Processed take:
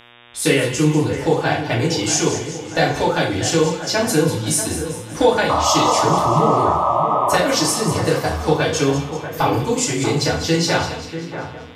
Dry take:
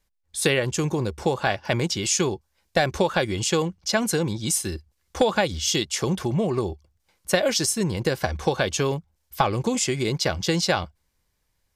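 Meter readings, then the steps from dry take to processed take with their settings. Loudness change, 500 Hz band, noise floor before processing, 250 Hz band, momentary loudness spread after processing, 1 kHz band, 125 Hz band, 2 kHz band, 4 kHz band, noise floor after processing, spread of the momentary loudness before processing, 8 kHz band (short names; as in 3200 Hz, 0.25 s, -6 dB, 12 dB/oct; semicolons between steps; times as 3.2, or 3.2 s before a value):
+6.0 dB, +6.0 dB, -73 dBFS, +6.5 dB, 8 LU, +10.5 dB, +6.0 dB, +5.0 dB, +4.0 dB, -34 dBFS, 6 LU, +4.5 dB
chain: FDN reverb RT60 0.54 s, low-frequency decay 0.9×, high-frequency decay 0.8×, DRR -6.5 dB; painted sound noise, 5.49–7.38, 550–1300 Hz -15 dBFS; on a send: split-band echo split 2100 Hz, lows 0.638 s, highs 0.194 s, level -10.5 dB; on the sum: buzz 120 Hz, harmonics 31, -44 dBFS 0 dB/oct; gain -3 dB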